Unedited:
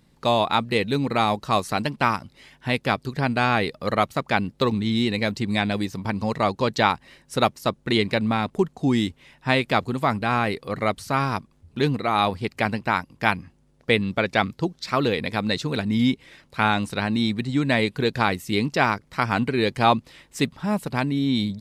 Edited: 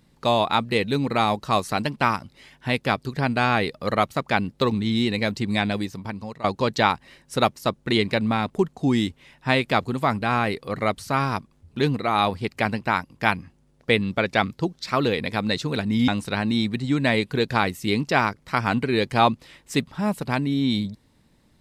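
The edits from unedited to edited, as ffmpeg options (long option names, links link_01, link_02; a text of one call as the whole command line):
ffmpeg -i in.wav -filter_complex "[0:a]asplit=3[link_01][link_02][link_03];[link_01]atrim=end=6.44,asetpts=PTS-STARTPTS,afade=type=out:start_time=5.68:duration=0.76:silence=0.141254[link_04];[link_02]atrim=start=6.44:end=16.082,asetpts=PTS-STARTPTS,afade=type=in:duration=0.004:curve=hsin:silence=0.141254[link_05];[link_03]atrim=start=16.728[link_06];[link_04][link_05]concat=n=2:v=0:a=1[link_07];[link_07][link_06]acrossfade=duration=0.004:curve1=hsin:curve2=hsin" out.wav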